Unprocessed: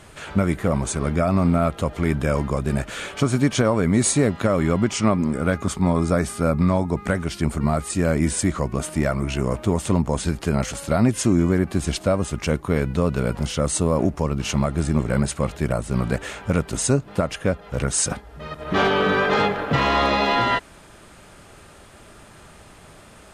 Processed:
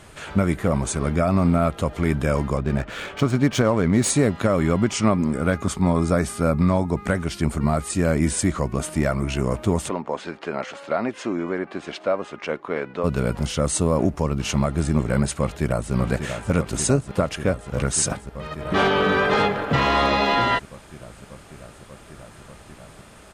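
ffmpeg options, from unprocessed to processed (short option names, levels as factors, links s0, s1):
-filter_complex "[0:a]asettb=1/sr,asplit=3[s0][s1][s2];[s0]atrim=end=2.574[s3];[s1]atrim=start=2.57:end=4.1,asetpts=PTS-STARTPTS,afade=t=in:d=0.004:c=qsin,afade=t=out:st=1.526:d=0.004:c=qsin,adynamicsmooth=sensitivity=5.5:basefreq=2600[s4];[s2]atrim=start=4.096[s5];[s3][s4]acrossfade=d=0.004:c1=hsin:c2=qsin[s6];[s6][s5]acrossfade=d=0.004:c1=qsin:c2=hsin,asplit=3[s7][s8][s9];[s7]afade=t=out:st=9.88:d=0.02[s10];[s8]highpass=400,lowpass=2900,afade=t=in:st=9.88:d=0.02,afade=t=out:st=13.03:d=0.02[s11];[s9]afade=t=in:st=13.03:d=0.02[s12];[s10][s11][s12]amix=inputs=3:normalize=0,asplit=2[s13][s14];[s14]afade=t=in:st=15.4:d=0.01,afade=t=out:st=15.93:d=0.01,aecho=0:1:590|1180|1770|2360|2950|3540|4130|4720|5310|5900|6490|7080:0.421697|0.358442|0.304676|0.258974|0.220128|0.187109|0.159043|0.135186|0.114908|0.0976721|0.0830212|0.0705681[s15];[s13][s15]amix=inputs=2:normalize=0"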